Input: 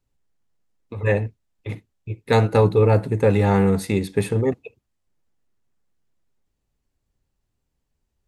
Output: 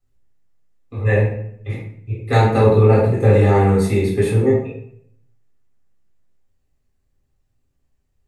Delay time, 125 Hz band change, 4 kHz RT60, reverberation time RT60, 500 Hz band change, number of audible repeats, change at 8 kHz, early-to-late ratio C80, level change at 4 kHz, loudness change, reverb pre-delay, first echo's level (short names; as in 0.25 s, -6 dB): none, +5.5 dB, 0.45 s, 0.65 s, +3.5 dB, none, +1.0 dB, 6.0 dB, +1.0 dB, +4.0 dB, 3 ms, none